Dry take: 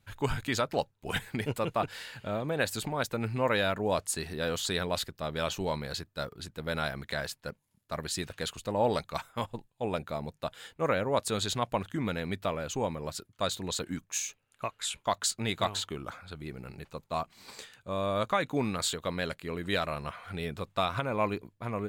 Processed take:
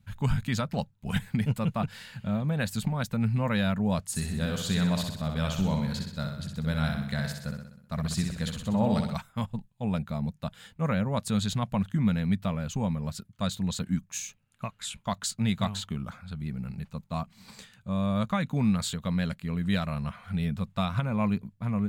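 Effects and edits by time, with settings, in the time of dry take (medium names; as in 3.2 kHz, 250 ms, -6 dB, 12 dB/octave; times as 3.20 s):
4.03–9.15 s: feedback delay 63 ms, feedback 55%, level -5 dB
whole clip: resonant low shelf 260 Hz +8.5 dB, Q 3; trim -2.5 dB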